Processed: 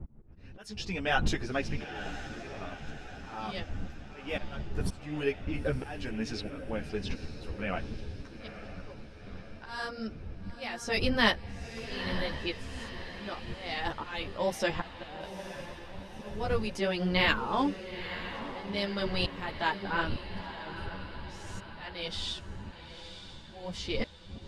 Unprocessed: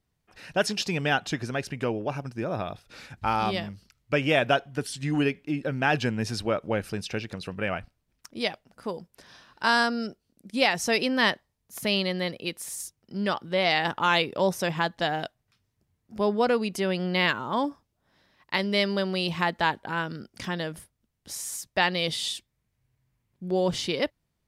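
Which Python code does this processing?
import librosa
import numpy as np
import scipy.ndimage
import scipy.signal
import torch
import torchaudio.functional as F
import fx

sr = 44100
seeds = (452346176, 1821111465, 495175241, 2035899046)

y = fx.dmg_wind(x, sr, seeds[0], corner_hz=120.0, level_db=-30.0)
y = fx.env_lowpass(y, sr, base_hz=1600.0, full_db=-19.5)
y = fx.dynamic_eq(y, sr, hz=110.0, q=0.93, threshold_db=-39.0, ratio=4.0, max_db=-4)
y = fx.auto_swell(y, sr, attack_ms=634.0)
y = fx.echo_diffused(y, sr, ms=919, feedback_pct=56, wet_db=-10.5)
y = fx.ensemble(y, sr)
y = y * 10.0 ** (1.5 / 20.0)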